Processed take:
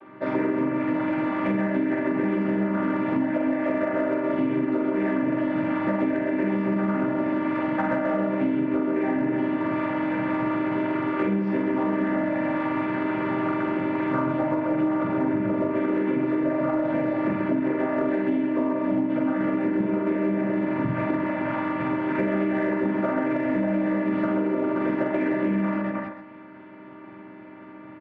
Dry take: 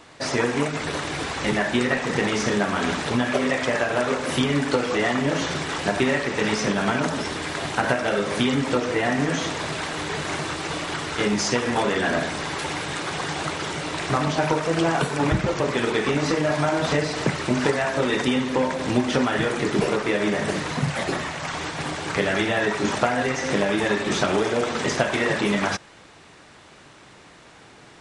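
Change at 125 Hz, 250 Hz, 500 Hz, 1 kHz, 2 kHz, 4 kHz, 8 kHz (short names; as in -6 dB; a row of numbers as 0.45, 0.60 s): -5.0 dB, +3.5 dB, -2.5 dB, -4.0 dB, -8.0 dB, under -20 dB, under -35 dB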